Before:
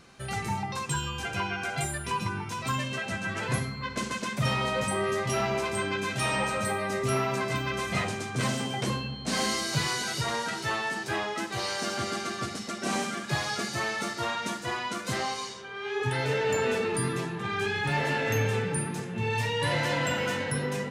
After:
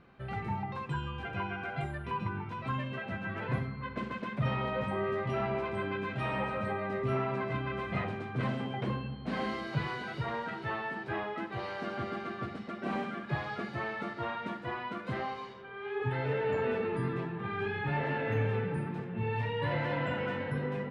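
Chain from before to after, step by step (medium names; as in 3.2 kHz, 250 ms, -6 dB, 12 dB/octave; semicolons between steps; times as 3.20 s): distance through air 490 m; trim -2.5 dB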